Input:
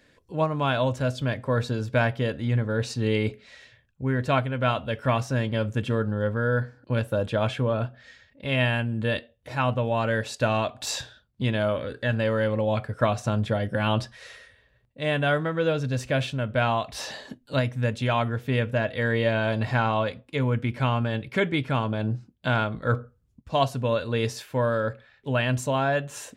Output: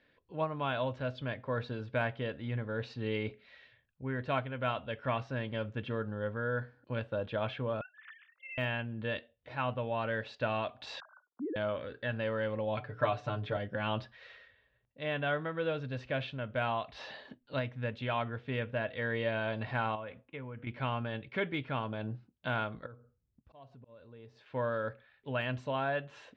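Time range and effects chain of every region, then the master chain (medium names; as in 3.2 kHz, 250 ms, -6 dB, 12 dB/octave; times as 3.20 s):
7.81–8.58 s: formants replaced by sine waves + high-pass 1.3 kHz 24 dB/octave + compression 3:1, threshold -37 dBFS
11.00–11.56 s: formants replaced by sine waves + rippled Chebyshev low-pass 1.5 kHz, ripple 3 dB
12.77–13.57 s: hum notches 60/120/180/240/300/360/420/480/540 Hz + comb 6.8 ms, depth 75%
19.95–20.67 s: low-pass 2.9 kHz 24 dB/octave + compression 5:1, threshold -29 dBFS
22.86–24.46 s: peaking EQ 2.9 kHz -10 dB 3 oct + slow attack 329 ms + compression 2.5:1, threshold -45 dBFS
whole clip: low-pass 3.8 kHz 24 dB/octave; de-esser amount 85%; bass shelf 320 Hz -5.5 dB; trim -7.5 dB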